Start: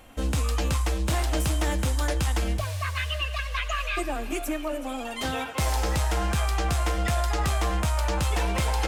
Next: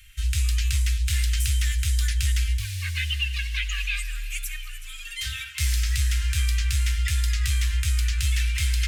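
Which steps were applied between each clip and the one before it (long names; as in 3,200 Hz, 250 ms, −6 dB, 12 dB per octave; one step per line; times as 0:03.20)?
inverse Chebyshev band-stop filter 200–880 Hz, stop band 50 dB
level +3.5 dB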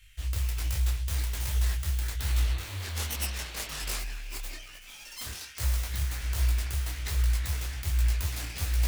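phase distortion by the signal itself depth 0.86 ms
sound drawn into the spectrogram noise, 0:02.19–0:03.99, 240–4,600 Hz −40 dBFS
micro pitch shift up and down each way 43 cents
level −2 dB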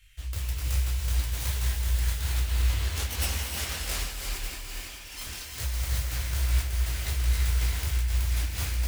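echo machine with several playback heads 205 ms, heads all three, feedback 53%, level −14 dB
reverb whose tail is shaped and stops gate 360 ms rising, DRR 0.5 dB
amplitude modulation by smooth noise, depth 60%
level +1.5 dB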